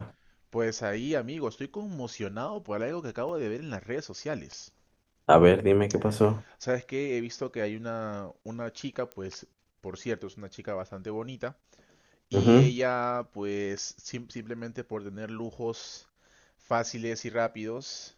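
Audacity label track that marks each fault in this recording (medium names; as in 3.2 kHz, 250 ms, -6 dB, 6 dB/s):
3.290000	3.290000	dropout 2.2 ms
9.120000	9.120000	pop -24 dBFS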